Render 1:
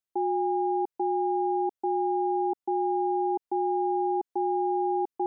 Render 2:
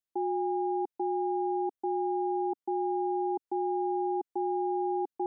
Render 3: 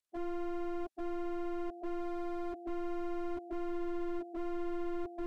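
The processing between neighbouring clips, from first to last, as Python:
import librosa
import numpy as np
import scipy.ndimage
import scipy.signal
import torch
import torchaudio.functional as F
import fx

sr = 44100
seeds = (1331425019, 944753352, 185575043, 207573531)

y1 = fx.peak_eq(x, sr, hz=290.0, db=3.0, octaves=0.77)
y1 = y1 * 10.0 ** (-4.5 / 20.0)
y2 = fx.partial_stretch(y1, sr, pct=87)
y2 = y2 + 10.0 ** (-20.0 / 20.0) * np.pad(y2, (int(1013 * sr / 1000.0), 0))[:len(y2)]
y2 = fx.slew_limit(y2, sr, full_power_hz=5.0)
y2 = y2 * 10.0 ** (1.5 / 20.0)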